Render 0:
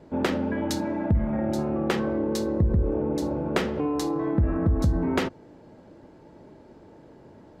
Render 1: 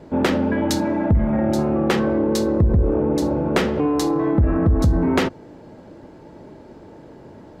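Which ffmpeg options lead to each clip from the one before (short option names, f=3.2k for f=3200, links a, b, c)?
-af "asoftclip=type=tanh:threshold=-16dB,volume=7.5dB"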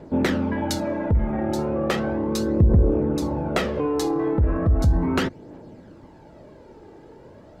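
-af "aphaser=in_gain=1:out_gain=1:delay=2.6:decay=0.41:speed=0.36:type=triangular,volume=-4dB"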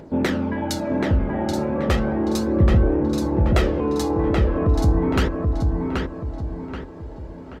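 -filter_complex "[0:a]acompressor=mode=upward:threshold=-41dB:ratio=2.5,asplit=2[a][b];[b]adelay=780,lowpass=f=3.4k:p=1,volume=-3dB,asplit=2[c][d];[d]adelay=780,lowpass=f=3.4k:p=1,volume=0.43,asplit=2[e][f];[f]adelay=780,lowpass=f=3.4k:p=1,volume=0.43,asplit=2[g][h];[h]adelay=780,lowpass=f=3.4k:p=1,volume=0.43,asplit=2[i][j];[j]adelay=780,lowpass=f=3.4k:p=1,volume=0.43,asplit=2[k][l];[l]adelay=780,lowpass=f=3.4k:p=1,volume=0.43[m];[a][c][e][g][i][k][m]amix=inputs=7:normalize=0"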